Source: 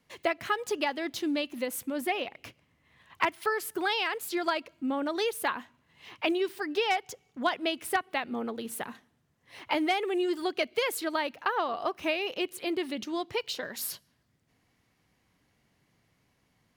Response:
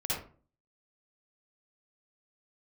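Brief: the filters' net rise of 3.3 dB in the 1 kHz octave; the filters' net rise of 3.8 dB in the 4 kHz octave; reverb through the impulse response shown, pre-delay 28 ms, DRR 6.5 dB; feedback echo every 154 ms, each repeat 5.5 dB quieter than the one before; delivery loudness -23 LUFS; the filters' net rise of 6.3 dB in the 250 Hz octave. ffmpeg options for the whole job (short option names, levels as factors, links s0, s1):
-filter_complex "[0:a]equalizer=f=250:t=o:g=8.5,equalizer=f=1000:t=o:g=3.5,equalizer=f=4000:t=o:g=5,aecho=1:1:154|308|462|616|770|924|1078:0.531|0.281|0.149|0.079|0.0419|0.0222|0.0118,asplit=2[s0][s1];[1:a]atrim=start_sample=2205,adelay=28[s2];[s1][s2]afir=irnorm=-1:irlink=0,volume=0.251[s3];[s0][s3]amix=inputs=2:normalize=0,volume=1.26"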